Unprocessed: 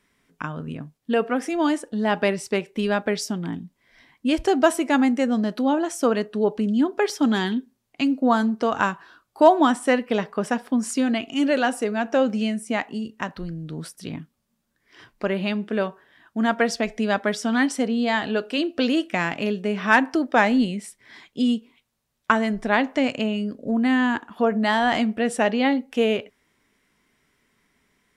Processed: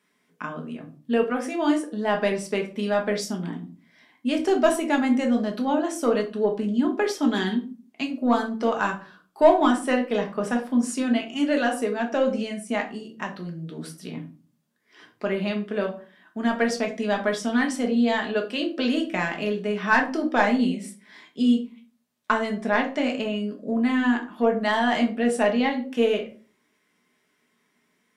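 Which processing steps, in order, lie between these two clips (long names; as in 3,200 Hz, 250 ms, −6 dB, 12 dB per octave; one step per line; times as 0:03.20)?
high-pass filter 180 Hz
soft clipping −4.5 dBFS, distortion −25 dB
convolution reverb RT60 0.35 s, pre-delay 5 ms, DRR 1.5 dB
level −4 dB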